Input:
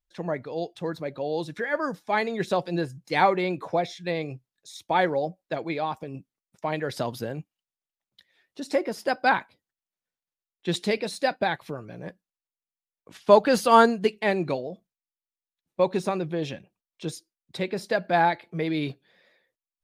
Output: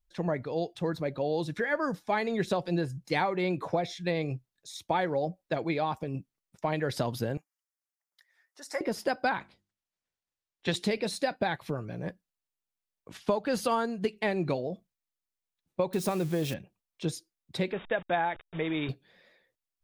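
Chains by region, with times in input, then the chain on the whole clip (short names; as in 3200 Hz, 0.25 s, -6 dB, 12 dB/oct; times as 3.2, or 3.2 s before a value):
7.37–8.81 HPF 1000 Hz + band shelf 3200 Hz -12 dB 1 oct
9.39–10.72 spectral limiter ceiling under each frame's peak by 13 dB + LPF 8100 Hz + notches 50/100/150/200/250/300/350 Hz
15.93–16.54 switching spikes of -29 dBFS + high shelf 10000 Hz -3.5 dB
17.72–18.89 level-crossing sampler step -37 dBFS + brick-wall FIR low-pass 3800 Hz + low shelf 300 Hz -11.5 dB
whole clip: low shelf 120 Hz +9.5 dB; compressor 12:1, threshold -24 dBFS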